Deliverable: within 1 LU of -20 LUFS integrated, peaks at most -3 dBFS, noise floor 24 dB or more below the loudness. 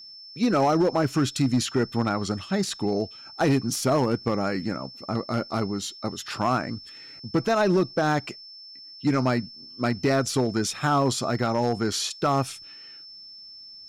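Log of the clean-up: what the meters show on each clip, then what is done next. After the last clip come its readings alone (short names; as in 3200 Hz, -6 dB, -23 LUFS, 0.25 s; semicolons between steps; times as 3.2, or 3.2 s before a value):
clipped 1.2%; flat tops at -15.5 dBFS; steady tone 5300 Hz; tone level -42 dBFS; loudness -25.5 LUFS; peak -15.5 dBFS; loudness target -20.0 LUFS
-> clip repair -15.5 dBFS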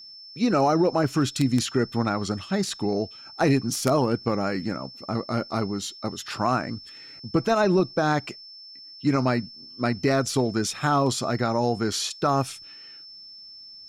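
clipped 0.0%; steady tone 5300 Hz; tone level -42 dBFS
-> notch 5300 Hz, Q 30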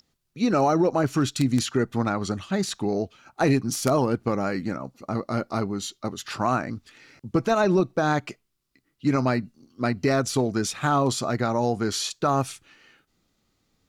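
steady tone none; loudness -25.0 LUFS; peak -6.5 dBFS; loudness target -20.0 LUFS
-> gain +5 dB; limiter -3 dBFS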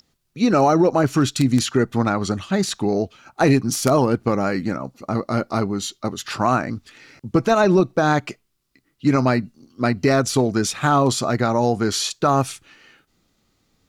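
loudness -20.0 LUFS; peak -3.0 dBFS; noise floor -69 dBFS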